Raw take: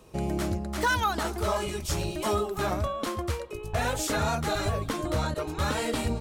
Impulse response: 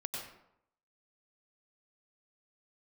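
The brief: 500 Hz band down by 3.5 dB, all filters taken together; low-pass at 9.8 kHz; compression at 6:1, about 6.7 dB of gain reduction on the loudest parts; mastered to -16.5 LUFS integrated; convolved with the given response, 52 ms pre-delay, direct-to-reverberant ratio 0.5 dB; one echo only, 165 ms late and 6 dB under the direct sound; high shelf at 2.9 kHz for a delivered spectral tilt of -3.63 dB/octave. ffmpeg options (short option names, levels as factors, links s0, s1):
-filter_complex "[0:a]lowpass=9800,equalizer=f=500:t=o:g=-5,highshelf=f=2900:g=7,acompressor=threshold=0.0355:ratio=6,aecho=1:1:165:0.501,asplit=2[s0][s1];[1:a]atrim=start_sample=2205,adelay=52[s2];[s1][s2]afir=irnorm=-1:irlink=0,volume=0.841[s3];[s0][s3]amix=inputs=2:normalize=0,volume=4.47"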